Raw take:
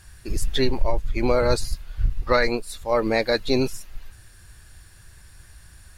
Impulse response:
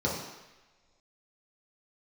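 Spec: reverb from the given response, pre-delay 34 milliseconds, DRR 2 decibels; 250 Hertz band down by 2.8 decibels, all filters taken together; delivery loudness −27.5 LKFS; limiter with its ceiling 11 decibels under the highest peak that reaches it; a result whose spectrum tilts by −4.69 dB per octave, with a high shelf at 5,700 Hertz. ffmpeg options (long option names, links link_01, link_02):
-filter_complex "[0:a]equalizer=frequency=250:width_type=o:gain=-3.5,highshelf=frequency=5700:gain=5.5,alimiter=limit=-18.5dB:level=0:latency=1,asplit=2[link_01][link_02];[1:a]atrim=start_sample=2205,adelay=34[link_03];[link_02][link_03]afir=irnorm=-1:irlink=0,volume=-12dB[link_04];[link_01][link_04]amix=inputs=2:normalize=0"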